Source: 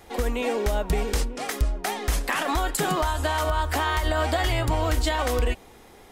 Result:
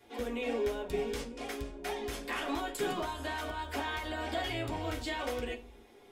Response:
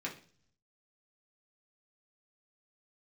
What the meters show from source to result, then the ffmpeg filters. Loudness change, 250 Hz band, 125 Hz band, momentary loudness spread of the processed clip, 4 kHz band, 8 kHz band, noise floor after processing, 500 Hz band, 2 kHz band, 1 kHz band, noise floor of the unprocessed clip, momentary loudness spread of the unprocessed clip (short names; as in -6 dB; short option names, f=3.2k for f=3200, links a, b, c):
-10.5 dB, -7.0 dB, -16.5 dB, 6 LU, -9.0 dB, -14.0 dB, -57 dBFS, -8.0 dB, -9.5 dB, -11.5 dB, -49 dBFS, 4 LU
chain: -filter_complex "[1:a]atrim=start_sample=2205,asetrate=61740,aresample=44100[a];[0:a][a]afir=irnorm=-1:irlink=0,volume=-8dB"